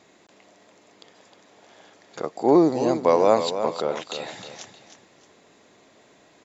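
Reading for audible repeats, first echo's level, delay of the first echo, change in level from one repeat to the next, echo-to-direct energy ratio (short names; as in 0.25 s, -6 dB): 2, -9.5 dB, 0.311 s, -9.5 dB, -9.0 dB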